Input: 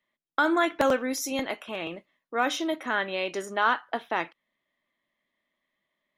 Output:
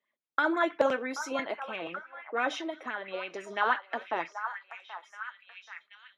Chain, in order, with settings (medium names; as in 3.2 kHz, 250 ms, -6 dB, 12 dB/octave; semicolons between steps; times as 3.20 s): band-pass 130–6400 Hz; repeats whose band climbs or falls 780 ms, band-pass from 1.1 kHz, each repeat 0.7 oct, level -8 dB; 2.57–3.51 s: compression 6:1, threshold -29 dBFS, peak gain reduction 8 dB; sweeping bell 6 Hz 420–2500 Hz +11 dB; trim -7.5 dB